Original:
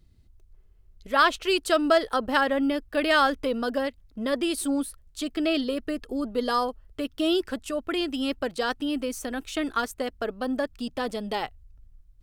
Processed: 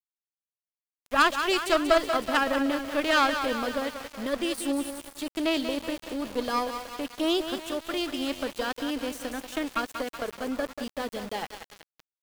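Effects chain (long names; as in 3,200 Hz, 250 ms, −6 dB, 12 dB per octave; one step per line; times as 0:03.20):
harmonic generator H 3 −21 dB, 4 −18 dB, 7 −37 dB, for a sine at −7.5 dBFS
feedback echo with a high-pass in the loop 187 ms, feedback 63%, high-pass 260 Hz, level −8 dB
centre clipping without the shift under −37 dBFS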